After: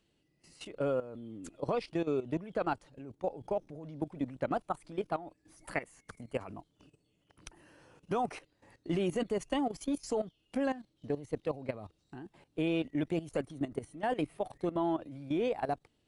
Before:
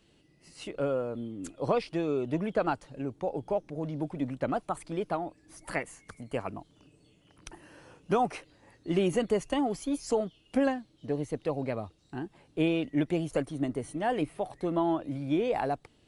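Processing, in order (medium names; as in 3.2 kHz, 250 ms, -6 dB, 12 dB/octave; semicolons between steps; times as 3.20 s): level held to a coarse grid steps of 15 dB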